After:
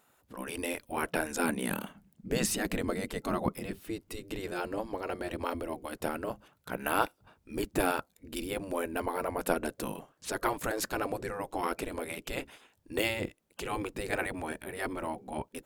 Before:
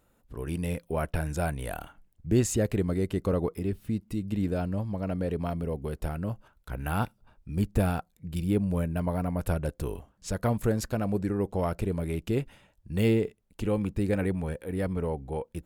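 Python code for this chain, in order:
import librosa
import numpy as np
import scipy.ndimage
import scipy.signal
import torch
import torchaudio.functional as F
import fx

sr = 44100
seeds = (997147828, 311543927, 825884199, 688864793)

y = fx.spec_gate(x, sr, threshold_db=-10, keep='weak')
y = fx.peak_eq(y, sr, hz=200.0, db=12.0, octaves=0.75, at=(1.39, 3.71))
y = y * 10.0 ** (5.5 / 20.0)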